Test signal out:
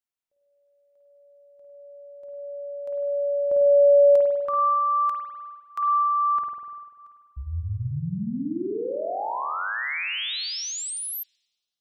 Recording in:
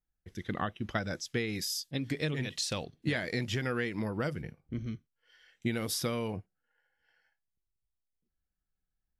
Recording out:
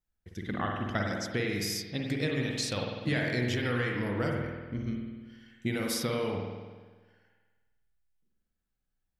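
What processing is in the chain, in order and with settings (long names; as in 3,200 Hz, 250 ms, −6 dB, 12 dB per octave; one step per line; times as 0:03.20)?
spring reverb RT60 1.4 s, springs 49 ms, chirp 50 ms, DRR 0 dB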